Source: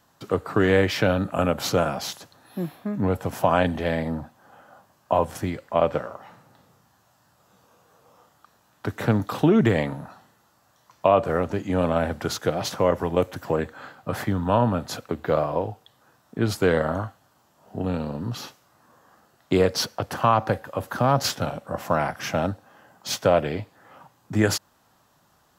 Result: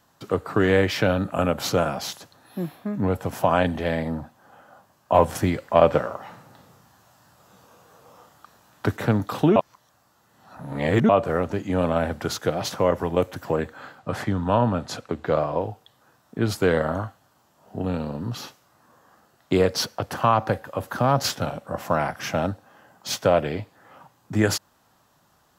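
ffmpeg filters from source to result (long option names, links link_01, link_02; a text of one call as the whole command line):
ffmpeg -i in.wav -filter_complex "[0:a]asettb=1/sr,asplit=3[link_01][link_02][link_03];[link_01]atrim=end=5.144[link_04];[link_02]atrim=start=5.14:end=8.97,asetpts=PTS-STARTPTS,afade=type=in:duration=0.004:curve=qsin,afade=type=out:start_time=3.826:duration=0.004:curve=qsin,acontrast=38[link_05];[link_03]atrim=start=8.966[link_06];[link_04][link_05]acrossfade=duration=0.004:curve1=hsin:curve2=qsin[link_07];[link_07][link_06]acrossfade=duration=0.004:curve1=qsin:curve2=hsin,asettb=1/sr,asplit=3[link_08][link_09][link_10];[link_08]atrim=end=13.994[link_11];[link_09]atrim=start=13.99:end=15.61,asetpts=PTS-STARTPTS,afade=type=in:duration=0.004:curve=qsin,afade=type=out:start_time=1.616:duration=0.004:curve=qsin,lowpass=9300[link_12];[link_10]atrim=start=15.606[link_13];[link_11][link_12]acrossfade=duration=0.004:curve1=hsin:curve2=qsin[link_14];[link_14][link_13]acrossfade=duration=0.004:curve1=qsin:curve2=hsin,asplit=3[link_15][link_16][link_17];[link_15]atrim=end=9.562[link_18];[link_16]atrim=start=9.558:end=11.092,asetpts=PTS-STARTPTS,areverse[link_19];[link_17]atrim=start=11.088[link_20];[link_18][link_19]acrossfade=duration=0.004:curve1=hsin:curve2=hsin[link_21];[link_21][link_20]acrossfade=duration=0.004:curve1=hsin:curve2=hsin" out.wav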